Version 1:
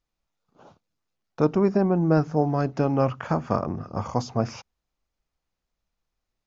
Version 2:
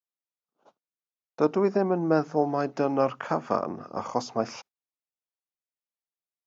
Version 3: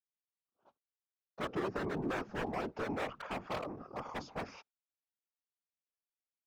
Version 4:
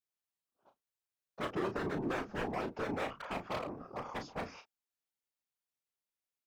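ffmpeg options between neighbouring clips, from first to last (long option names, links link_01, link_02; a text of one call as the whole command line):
ffmpeg -i in.wav -af "highpass=280,agate=range=-19dB:threshold=-49dB:ratio=16:detection=peak" out.wav
ffmpeg -i in.wav -af "lowpass=3800,aeval=exprs='0.0891*(abs(mod(val(0)/0.0891+3,4)-2)-1)':channel_layout=same,afftfilt=real='hypot(re,im)*cos(2*PI*random(0))':imag='hypot(re,im)*sin(2*PI*random(1))':win_size=512:overlap=0.75,volume=-2.5dB" out.wav
ffmpeg -i in.wav -filter_complex "[0:a]asplit=2[link_01][link_02];[link_02]adelay=34,volume=-8.5dB[link_03];[link_01][link_03]amix=inputs=2:normalize=0" out.wav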